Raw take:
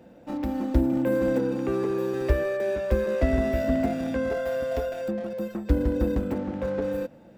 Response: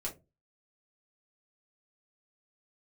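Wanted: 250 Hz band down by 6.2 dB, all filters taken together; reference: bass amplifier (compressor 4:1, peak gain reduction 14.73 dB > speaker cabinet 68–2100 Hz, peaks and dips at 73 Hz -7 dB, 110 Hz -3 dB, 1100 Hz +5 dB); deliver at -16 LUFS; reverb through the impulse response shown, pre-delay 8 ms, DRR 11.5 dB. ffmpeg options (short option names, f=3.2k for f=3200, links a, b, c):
-filter_complex "[0:a]equalizer=f=250:t=o:g=-7.5,asplit=2[a][b];[1:a]atrim=start_sample=2205,adelay=8[c];[b][c]afir=irnorm=-1:irlink=0,volume=-12.5dB[d];[a][d]amix=inputs=2:normalize=0,acompressor=threshold=-34dB:ratio=4,highpass=f=68:w=0.5412,highpass=f=68:w=1.3066,equalizer=f=73:t=q:w=4:g=-7,equalizer=f=110:t=q:w=4:g=-3,equalizer=f=1.1k:t=q:w=4:g=5,lowpass=f=2.1k:w=0.5412,lowpass=f=2.1k:w=1.3066,volume=21dB"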